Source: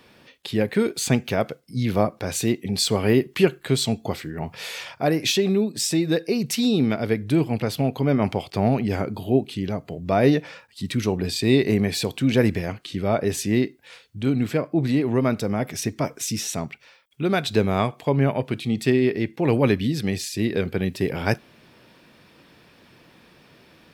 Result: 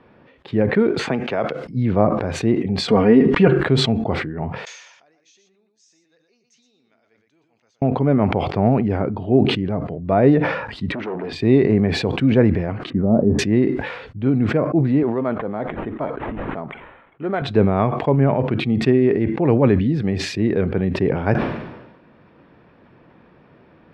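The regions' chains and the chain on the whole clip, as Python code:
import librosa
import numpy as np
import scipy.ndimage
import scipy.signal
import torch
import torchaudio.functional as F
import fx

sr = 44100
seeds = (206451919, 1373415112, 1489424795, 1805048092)

y = fx.chain(x, sr, fx.highpass(hz=530.0, slope=6),
    fx.band_squash(depth_pct=70), at=(0.99, 1.65))
y = fx.chain(y, sr, fx.comb(ms=4.2, depth=0.8),
    fx.pre_swell(db_per_s=120.0), at=(2.88, 3.48))
y = fx.chain(y, sr, fx.bandpass_q(hz=6400.0, q=11.0),
    fx.echo_single(ms=118, db=-7.5), at=(4.65, 7.82))
y = fx.chain(y, sr, fx.clip_hard(threshold_db=-24.0),
    fx.bandpass_edges(low_hz=340.0, high_hz=3400.0),
    fx.env_flatten(amount_pct=50), at=(10.92, 11.33))
y = fx.chain(y, sr, fx.lowpass(hz=1800.0, slope=24),
    fx.env_lowpass_down(base_hz=540.0, full_db=-21.0),
    fx.peak_eq(hz=220.0, db=10.0, octaves=0.35), at=(12.9, 13.39))
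y = fx.chain(y, sr, fx.highpass(hz=540.0, slope=6),
    fx.resample_linear(factor=8), at=(15.03, 17.42))
y = scipy.signal.sosfilt(scipy.signal.butter(2, 1400.0, 'lowpass', fs=sr, output='sos'), y)
y = fx.sustainer(y, sr, db_per_s=54.0)
y = F.gain(torch.from_numpy(y), 3.5).numpy()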